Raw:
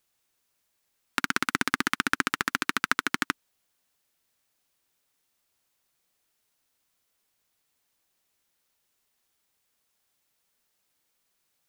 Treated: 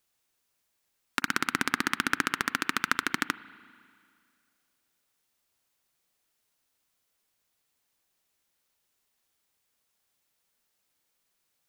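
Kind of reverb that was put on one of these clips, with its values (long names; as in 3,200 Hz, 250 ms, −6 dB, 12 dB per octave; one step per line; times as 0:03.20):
spring reverb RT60 2.2 s, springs 37/49 ms, chirp 50 ms, DRR 17 dB
level −1.5 dB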